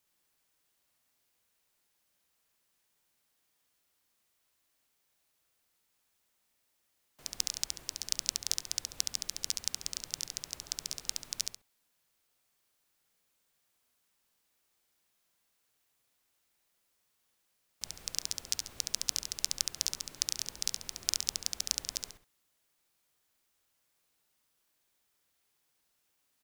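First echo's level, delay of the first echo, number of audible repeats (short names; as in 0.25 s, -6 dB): -4.0 dB, 69 ms, 2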